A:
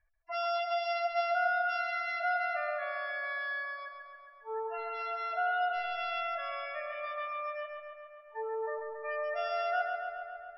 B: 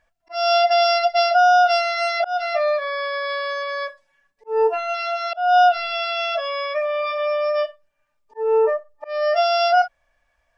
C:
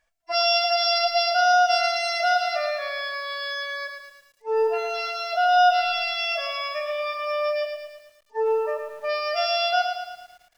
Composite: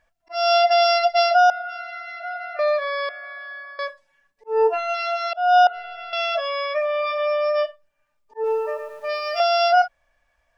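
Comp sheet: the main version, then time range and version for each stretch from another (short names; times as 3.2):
B
1.5–2.59 from A
3.09–3.79 from A
5.67–6.13 from A
8.44–9.4 from C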